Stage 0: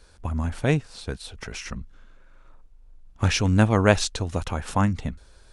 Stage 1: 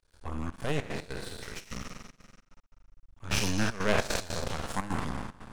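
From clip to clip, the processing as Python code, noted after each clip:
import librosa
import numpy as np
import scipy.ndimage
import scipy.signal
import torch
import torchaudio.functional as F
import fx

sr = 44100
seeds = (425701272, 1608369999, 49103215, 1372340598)

y = fx.spec_trails(x, sr, decay_s=1.7)
y = np.maximum(y, 0.0)
y = fx.step_gate(y, sr, bpm=150, pattern='.xxxx.xx.x.xxxxx', floor_db=-12.0, edge_ms=4.5)
y = F.gain(torch.from_numpy(y), -5.5).numpy()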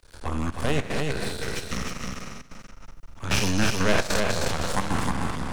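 y = x + 10.0 ** (-4.5 / 20.0) * np.pad(x, (int(310 * sr / 1000.0), 0))[:len(x)]
y = fx.band_squash(y, sr, depth_pct=40)
y = F.gain(torch.from_numpy(y), 5.5).numpy()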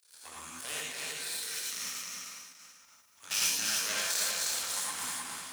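y = scipy.signal.sosfilt(scipy.signal.butter(2, 64.0, 'highpass', fs=sr, output='sos'), x)
y = np.diff(y, prepend=0.0)
y = fx.rev_gated(y, sr, seeds[0], gate_ms=130, shape='rising', drr_db=-3.5)
y = F.gain(torch.from_numpy(y), -1.5).numpy()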